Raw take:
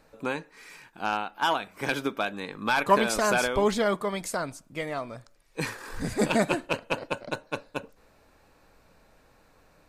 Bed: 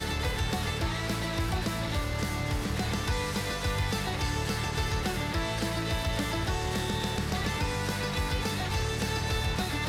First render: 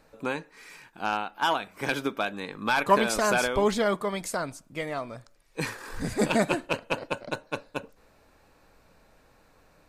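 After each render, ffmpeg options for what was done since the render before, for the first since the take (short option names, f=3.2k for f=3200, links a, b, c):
-af anull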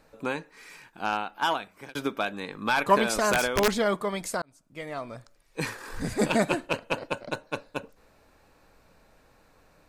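-filter_complex "[0:a]asettb=1/sr,asplit=3[a][b][c];[a]atrim=end=3.324[d];[b]atrim=start=3.32:end=3.73,asetpts=PTS-STARTPTS,afade=t=in:d=0.004:c=qsin,afade=t=out:st=0.406:d=0.004:c=qsin,aeval=exprs='(mod(5.31*val(0)+1,2)-1)/5.31':c=same[e];[c]atrim=start=3.726[f];[d][e]acrossfade=d=0.004:c1=hsin:c2=qsin[g];[g][f]acrossfade=d=0.004:c1=qsin:c2=hsin,asplit=3[h][i][j];[h]atrim=end=1.95,asetpts=PTS-STARTPTS,afade=t=out:st=1.3:d=0.65:c=qsin[k];[i]atrim=start=1.95:end=4.42,asetpts=PTS-STARTPTS,afade=t=in:d=0.004:c=hsin,afade=t=out:st=2.466:d=0.004:c=hsin[l];[j]atrim=start=4.42,asetpts=PTS-STARTPTS,afade=t=in:d=0.72[m];[k][l][m]concat=n=3:v=0:a=1"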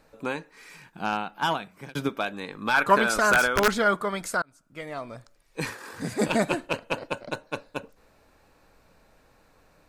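-filter_complex "[0:a]asettb=1/sr,asplit=3[a][b][c];[a]atrim=end=0.744[d];[b]atrim=start=0.74:end=2.09,asetpts=PTS-STARTPTS,afade=t=in:d=0.004:c=qsin,afade=t=out:st=1.346:d=0.004:c=qsin,equalizer=f=160:t=o:w=0.77:g=12[e];[c]atrim=start=2.086[f];[d][e]acrossfade=d=0.004:c1=hsin:c2=qsin[g];[g][f]acrossfade=d=0.004:c1=qsin:c2=hsin,asettb=1/sr,asplit=3[h][i][j];[h]atrim=end=2.744[k];[i]atrim=start=2.74:end=4.81,asetpts=PTS-STARTPTS,afade=t=in:d=0.004:c=qsin,afade=t=out:st=2.066:d=0.004:c=qsin,equalizer=f=1.4k:w=3.8:g=11[l];[j]atrim=start=4.806[m];[k][l]acrossfade=d=0.004:c1=hsin:c2=qsin[n];[n][m]acrossfade=d=0.004:c1=qsin:c2=hsin,asettb=1/sr,asplit=3[o][p][q];[o]atrim=end=5.704[r];[p]atrim=start=5.7:end=6.28,asetpts=PTS-STARTPTS,afade=t=in:d=0.004:c=qsin,afade=t=out:st=0.576:d=0.004:c=qsin,highpass=f=110:w=0.5412,highpass=f=110:w=1.3066[s];[q]atrim=start=6.276[t];[r][s]acrossfade=d=0.004:c1=hsin:c2=qsin[u];[u][t]acrossfade=d=0.004:c1=qsin:c2=hsin"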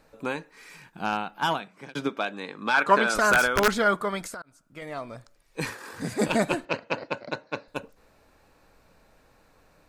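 -filter_complex "[0:a]asettb=1/sr,asplit=3[a][b][c];[a]atrim=end=1.604[d];[b]atrim=start=1.6:end=3.15,asetpts=PTS-STARTPTS,afade=t=in:d=0.004:c=qsin,afade=t=out:st=1.546:d=0.004:c=qsin,highpass=180,lowpass=7.7k[e];[c]atrim=start=3.146[f];[d][e]acrossfade=d=0.004:c1=hsin:c2=qsin[g];[g][f]acrossfade=d=0.004:c1=qsin:c2=hsin,asettb=1/sr,asplit=3[h][i][j];[h]atrim=end=4.264[k];[i]atrim=start=4.26:end=4.82,asetpts=PTS-STARTPTS,afade=t=in:d=0.004:c=qsin,afade=t=out:st=0.556:d=0.004:c=qsin,acompressor=threshold=-34dB:ratio=16:attack=3.2:release=140:knee=1:detection=peak[l];[j]atrim=start=4.816[m];[k][l]acrossfade=d=0.004:c1=hsin:c2=qsin[n];[n][m]acrossfade=d=0.004:c1=qsin:c2=hsin,asettb=1/sr,asplit=3[o][p][q];[o]atrim=end=6.654[r];[p]atrim=start=6.65:end=7.68,asetpts=PTS-STARTPTS,afade=t=in:d=0.004:c=qsin,afade=t=out:st=1.026:d=0.004:c=qsin,highpass=110,equalizer=f=2k:t=q:w=4:g=5,equalizer=f=3.1k:t=q:w=4:g=-5,equalizer=f=4.6k:t=q:w=4:g=4,lowpass=f=5.9k:w=0.5412,lowpass=f=5.9k:w=1.3066[s];[q]atrim=start=7.676[t];[r][s]acrossfade=d=0.004:c1=hsin:c2=qsin[u];[u][t]acrossfade=d=0.004:c1=qsin:c2=hsin"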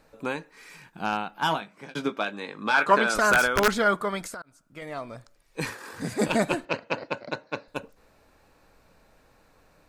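-filter_complex "[0:a]asettb=1/sr,asplit=3[a][b][c];[a]atrim=end=1.444[d];[b]atrim=start=1.44:end=2.94,asetpts=PTS-STARTPTS,afade=t=in:d=0.004:c=qsin,afade=t=out:st=1.496:d=0.004:c=qsin,asplit=2[e][f];[f]adelay=19,volume=-9.5dB[g];[e][g]amix=inputs=2:normalize=0,atrim=end_sample=66150[h];[c]atrim=start=2.936[i];[d][h]acrossfade=d=0.004:c1=hsin:c2=qsin[j];[j][i]acrossfade=d=0.004:c1=qsin:c2=hsin"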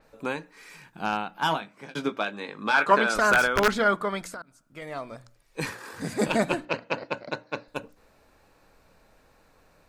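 -af "bandreject=f=60:t=h:w=6,bandreject=f=120:t=h:w=6,bandreject=f=180:t=h:w=6,bandreject=f=240:t=h:w=6,bandreject=f=300:t=h:w=6,adynamicequalizer=threshold=0.00631:dfrequency=5700:dqfactor=0.7:tfrequency=5700:tqfactor=0.7:attack=5:release=100:ratio=0.375:range=3:mode=cutabove:tftype=highshelf"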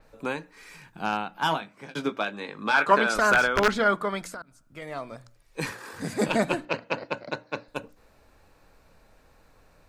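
-filter_complex "[0:a]acrossover=split=110|7000[a][b][c];[a]acompressor=mode=upward:threshold=-52dB:ratio=2.5[d];[c]alimiter=level_in=4.5dB:limit=-24dB:level=0:latency=1:release=340,volume=-4.5dB[e];[d][b][e]amix=inputs=3:normalize=0"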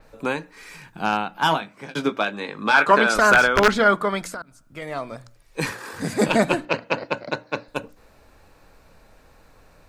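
-af "volume=5.5dB,alimiter=limit=-3dB:level=0:latency=1"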